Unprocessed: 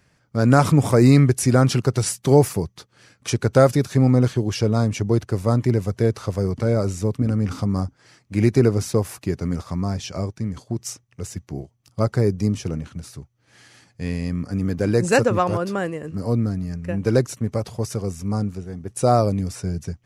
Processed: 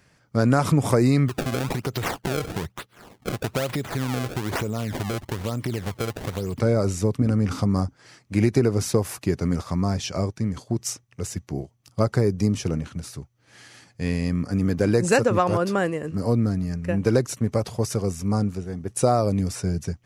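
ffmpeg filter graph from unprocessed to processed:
-filter_complex "[0:a]asettb=1/sr,asplit=3[s0][s1][s2];[s0]atrim=end=1.284[s3];[s1]atrim=start=1.28:end=6.6,asetpts=PTS-STARTPTS,afade=t=in:d=0.004:c=qsin,afade=t=out:st=5.316:d=0.004:c=qsin,equalizer=f=3400:t=o:w=1.1:g=7,acompressor=threshold=0.0631:ratio=6:attack=3.2:release=140:knee=1:detection=peak,acrusher=samples=27:mix=1:aa=0.000001:lfo=1:lforange=43.2:lforate=1.1[s4];[s2]atrim=start=6.596[s5];[s3][s4]acrossfade=d=0.004:c1=hsin:c2=qsin[s6];[s6][s5]acrossfade=d=0.004:c1=qsin:c2=hsin,lowshelf=f=160:g=-3,acompressor=threshold=0.141:ratio=6,volume=1.33"

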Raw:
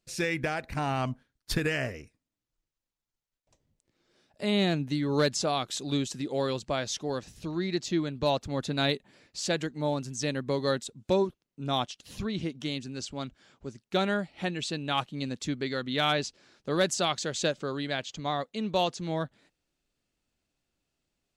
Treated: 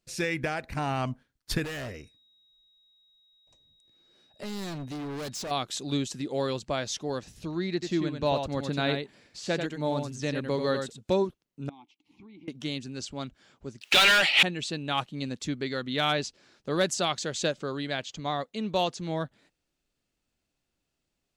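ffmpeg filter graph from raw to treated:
-filter_complex "[0:a]asettb=1/sr,asplit=3[s0][s1][s2];[s0]atrim=end=1.644[s3];[s1]atrim=start=1.64:end=5.51,asetpts=PTS-STARTPTS,afade=t=in:d=0.004:c=qsin,afade=t=out:st=3.866:d=0.004:c=qsin,volume=50.1,asoftclip=hard,volume=0.02,aeval=exprs='val(0)+0.000794*sin(2*PI*3800*n/s)':c=same[s4];[s2]atrim=start=5.506[s5];[s3][s4]acrossfade=d=0.004:c1=hsin:c2=qsin[s6];[s6][s5]acrossfade=d=0.004:c1=qsin:c2=hsin,asettb=1/sr,asplit=3[s7][s8][s9];[s7]atrim=end=7.734[s10];[s8]atrim=start=7.73:end=11.01,asetpts=PTS-STARTPTS,afade=t=in:d=0.004:c=qsin,afade=t=out:st=3.276:d=0.004:c=qsin,acrossover=split=3500[s11][s12];[s12]acompressor=threshold=0.00794:ratio=4:attack=1:release=60[s13];[s11][s13]amix=inputs=2:normalize=0,aecho=1:1:91:0.501,atrim=end_sample=144648[s14];[s9]atrim=start=11.006[s15];[s10][s14]acrossfade=d=0.004:c1=hsin:c2=qsin[s16];[s16][s15]acrossfade=d=0.004:c1=qsin:c2=hsin,asettb=1/sr,asplit=3[s17][s18][s19];[s17]atrim=end=11.694[s20];[s18]atrim=start=11.69:end=12.48,asetpts=PTS-STARTPTS,afade=t=in:d=0.004:c=qsin,afade=t=out:st=0.786:d=0.004:c=qsin,asplit=3[s21][s22][s23];[s21]bandpass=f=300:t=q:w=8,volume=1[s24];[s22]bandpass=f=870:t=q:w=8,volume=0.501[s25];[s23]bandpass=f=2240:t=q:w=8,volume=0.355[s26];[s24][s25][s26]amix=inputs=3:normalize=0,acompressor=threshold=0.00501:ratio=12:attack=3.2:release=140:knee=1:detection=peak[s27];[s19]atrim=start=12.476[s28];[s20][s27]acrossfade=d=0.004:c1=hsin:c2=qsin[s29];[s29][s28]acrossfade=d=0.004:c1=qsin:c2=hsin,asettb=1/sr,asplit=3[s30][s31][s32];[s30]atrim=end=13.814[s33];[s31]atrim=start=13.81:end=14.43,asetpts=PTS-STARTPTS,afade=t=in:d=0.004:c=qsin,afade=t=out:st=0.616:d=0.004:c=qsin,highpass=f=1200:p=1,asplit=2[s34][s35];[s35]highpass=f=720:p=1,volume=63.1,asoftclip=type=tanh:threshold=0.133[s36];[s34][s36]amix=inputs=2:normalize=0,lowpass=f=7400:p=1,volume=0.501,equalizer=f=2800:w=1.4:g=11.5[s37];[s32]atrim=start=14.426[s38];[s33][s37]acrossfade=d=0.004:c1=hsin:c2=qsin[s39];[s39][s38]acrossfade=d=0.004:c1=qsin:c2=hsin"

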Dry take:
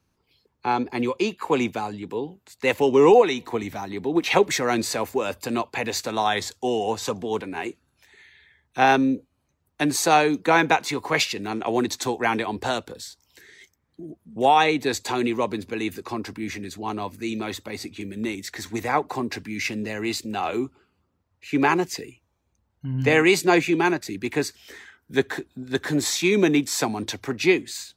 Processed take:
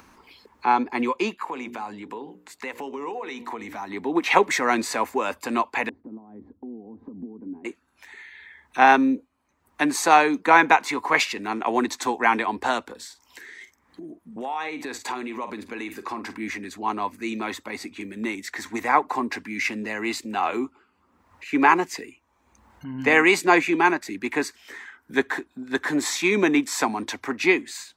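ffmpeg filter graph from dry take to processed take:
-filter_complex "[0:a]asettb=1/sr,asplit=3[s0][s1][s2];[s0]atrim=end=1.414[s3];[s1]atrim=start=1.41:end=3.9,asetpts=PTS-STARTPTS,afade=t=in:d=0.004:c=qsin,afade=t=out:st=2.486:d=0.004:c=qsin,bandreject=f=60:t=h:w=6,bandreject=f=120:t=h:w=6,bandreject=f=180:t=h:w=6,bandreject=f=240:t=h:w=6,bandreject=f=300:t=h:w=6,bandreject=f=360:t=h:w=6,bandreject=f=420:t=h:w=6,bandreject=f=480:t=h:w=6,bandreject=f=540:t=h:w=6,acompressor=threshold=0.0282:ratio=5:attack=3.2:release=140:knee=1:detection=peak[s4];[s2]atrim=start=3.896[s5];[s3][s4]acrossfade=d=0.004:c1=hsin:c2=qsin[s6];[s6][s5]acrossfade=d=0.004:c1=qsin:c2=hsin,asettb=1/sr,asplit=3[s7][s8][s9];[s7]atrim=end=5.894[s10];[s8]atrim=start=5.89:end=7.65,asetpts=PTS-STARTPTS,afade=t=in:d=0.004:c=qsin,afade=t=out:st=1.756:d=0.004:c=qsin,aemphasis=mode=reproduction:type=75fm,acompressor=threshold=0.0178:ratio=8:attack=3.2:release=140:knee=1:detection=peak,lowpass=f=260:t=q:w=2.6[s11];[s9]atrim=start=7.646[s12];[s10][s11]acrossfade=d=0.004:c1=hsin:c2=qsin[s13];[s13][s12]acrossfade=d=0.004:c1=qsin:c2=hsin,asettb=1/sr,asplit=3[s14][s15][s16];[s14]atrim=end=12.964[s17];[s15]atrim=start=12.96:end=16.38,asetpts=PTS-STARTPTS,afade=t=in:d=0.004:c=qsin,afade=t=out:st=3.416:d=0.004:c=qsin,asplit=2[s18][s19];[s19]adelay=47,volume=0.224[s20];[s18][s20]amix=inputs=2:normalize=0,atrim=end_sample=150822,acompressor=threshold=0.0398:ratio=8:attack=3.2:release=140:knee=1:detection=peak[s21];[s16]atrim=start=16.376[s22];[s17][s21]acrossfade=d=0.004:c1=hsin:c2=qsin[s23];[s23][s22]acrossfade=d=0.004:c1=qsin:c2=hsin,equalizer=f=125:t=o:w=1:g=-10,equalizer=f=250:t=o:w=1:g=8,equalizer=f=1000:t=o:w=1:g=11,equalizer=f=2000:t=o:w=1:g=8,equalizer=f=8000:t=o:w=1:g=4,acompressor=mode=upward:threshold=0.0282:ratio=2.5,volume=0.501"

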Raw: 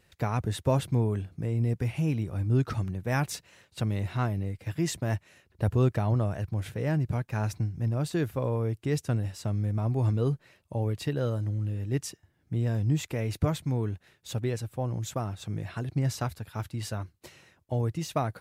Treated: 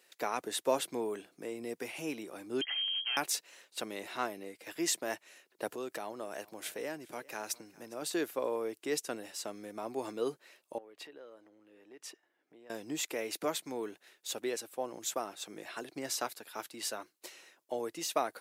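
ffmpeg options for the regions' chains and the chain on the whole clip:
-filter_complex "[0:a]asettb=1/sr,asplit=3[s0][s1][s2];[s0]atrim=end=2.614[s3];[s1]atrim=start=2.61:end=3.17,asetpts=PTS-STARTPTS,afade=t=in:d=0.004:c=qsin,afade=t=out:st=0.556:d=0.004:c=qsin,asoftclip=type=hard:threshold=0.0211,lowpass=f=2800:t=q:w=0.5098,lowpass=f=2800:t=q:w=0.6013,lowpass=f=2800:t=q:w=0.9,lowpass=f=2800:t=q:w=2.563,afreqshift=-3300[s4];[s2]atrim=start=3.166[s5];[s3][s4]acrossfade=d=0.004:c1=hsin:c2=qsin[s6];[s6][s5]acrossfade=d=0.004:c1=qsin:c2=hsin,asettb=1/sr,asplit=3[s7][s8][s9];[s7]atrim=end=5.694[s10];[s8]atrim=start=5.69:end=8.02,asetpts=PTS-STARTPTS,afade=t=in:d=0.004:c=qsin,afade=t=out:st=2.326:d=0.004:c=qsin,highshelf=f=5300:g=4.5,acompressor=threshold=0.0398:ratio=6:attack=3.2:release=140:knee=1:detection=peak,aecho=1:1:406:0.0794,atrim=end_sample=102753[s11];[s9]atrim=start=8.016[s12];[s10][s11]acrossfade=d=0.004:c1=hsin:c2=qsin[s13];[s13][s12]acrossfade=d=0.004:c1=qsin:c2=hsin,asettb=1/sr,asplit=3[s14][s15][s16];[s14]atrim=end=10.784[s17];[s15]atrim=start=10.78:end=12.7,asetpts=PTS-STARTPTS,afade=t=in:d=0.004:c=qsin,afade=t=out:st=1.916:d=0.004:c=qsin,bass=f=250:g=-7,treble=f=4000:g=-14,acompressor=threshold=0.00708:ratio=12:attack=3.2:release=140:knee=1:detection=peak[s18];[s16]atrim=start=12.696[s19];[s17][s18]acrossfade=d=0.004:c1=hsin:c2=qsin[s20];[s20][s19]acrossfade=d=0.004:c1=qsin:c2=hsin,highpass=f=310:w=0.5412,highpass=f=310:w=1.3066,highshelf=f=3400:g=7.5,volume=0.794"

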